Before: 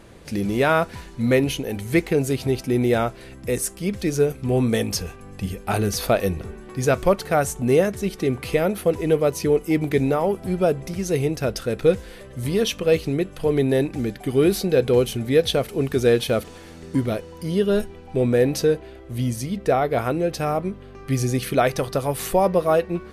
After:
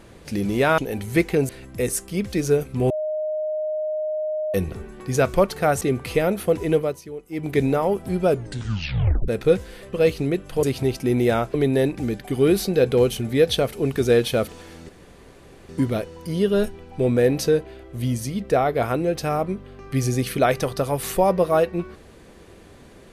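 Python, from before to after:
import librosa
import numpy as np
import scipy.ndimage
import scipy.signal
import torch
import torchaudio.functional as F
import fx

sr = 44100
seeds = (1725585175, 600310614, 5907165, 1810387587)

y = fx.edit(x, sr, fx.cut(start_s=0.78, length_s=0.78),
    fx.move(start_s=2.27, length_s=0.91, to_s=13.5),
    fx.bleep(start_s=4.59, length_s=1.64, hz=617.0, db=-22.5),
    fx.cut(start_s=7.5, length_s=0.69),
    fx.fade_down_up(start_s=9.11, length_s=0.85, db=-16.0, fade_s=0.29),
    fx.tape_stop(start_s=10.66, length_s=1.0),
    fx.cut(start_s=12.31, length_s=0.49),
    fx.insert_room_tone(at_s=16.85, length_s=0.8), tone=tone)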